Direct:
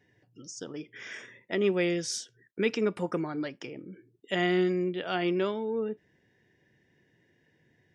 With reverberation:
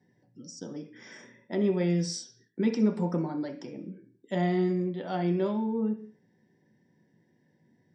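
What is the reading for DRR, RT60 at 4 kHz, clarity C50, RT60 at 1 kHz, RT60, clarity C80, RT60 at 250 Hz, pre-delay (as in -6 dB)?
2.5 dB, n/a, 11.0 dB, 0.45 s, 0.45 s, 16.0 dB, 0.55 s, 3 ms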